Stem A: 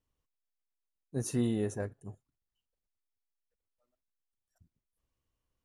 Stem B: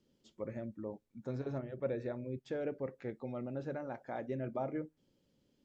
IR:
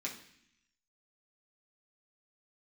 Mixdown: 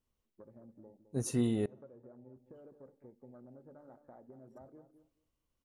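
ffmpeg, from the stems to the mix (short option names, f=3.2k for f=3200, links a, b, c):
-filter_complex "[0:a]bandreject=f=1.7k:w=12,volume=-1dB,asplit=3[a][b][c];[a]atrim=end=1.66,asetpts=PTS-STARTPTS,afade=t=out:st=1.656:d=0.004:c=hsin[d];[b]atrim=start=1.66:end=2.36,asetpts=PTS-STARTPTS,volume=0[e];[c]atrim=start=2.36,asetpts=PTS-STARTPTS,afade=t=in:d=0.004:c=hsin[f];[d][e][f]concat=n=3:v=0:a=1,asplit=2[g][h];[h]volume=-23.5dB[i];[1:a]lowpass=f=2.1k:w=0.5412,lowpass=f=2.1k:w=1.3066,afwtdn=0.00501,acompressor=threshold=-47dB:ratio=6,volume=-6.5dB,asplit=3[j][k][l];[k]volume=-14dB[m];[l]volume=-11dB[n];[2:a]atrim=start_sample=2205[o];[i][m]amix=inputs=2:normalize=0[p];[p][o]afir=irnorm=-1:irlink=0[q];[n]aecho=0:1:212|424|636:1|0.16|0.0256[r];[g][j][q][r]amix=inputs=4:normalize=0"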